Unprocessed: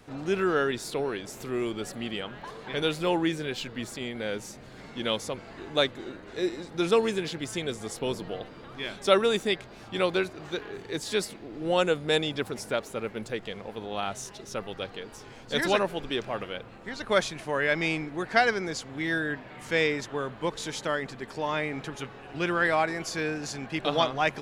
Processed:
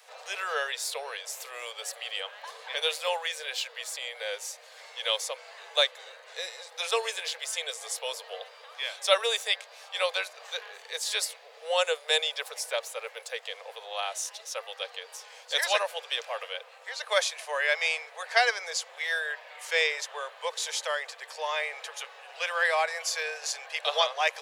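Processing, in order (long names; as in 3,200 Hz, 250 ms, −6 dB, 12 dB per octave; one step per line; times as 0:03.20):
Butterworth high-pass 470 Hz 96 dB per octave
high-shelf EQ 2,300 Hz +9.5 dB
notch filter 1,400 Hz, Q 13
level −2.5 dB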